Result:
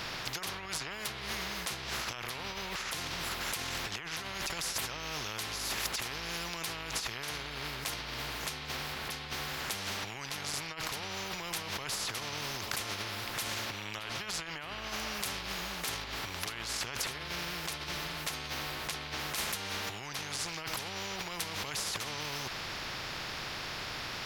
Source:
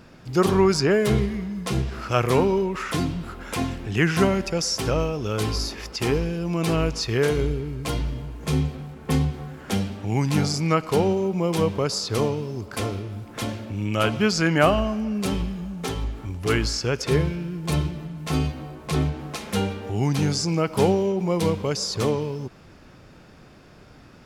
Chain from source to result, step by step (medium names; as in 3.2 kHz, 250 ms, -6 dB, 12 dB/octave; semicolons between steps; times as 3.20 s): graphic EQ 125/250/500/1000/2000/4000/8000 Hz +5/-11/-7/+6/+8/+6/-9 dB; compressor with a negative ratio -32 dBFS, ratio -1; spectrum-flattening compressor 4:1; trim -4 dB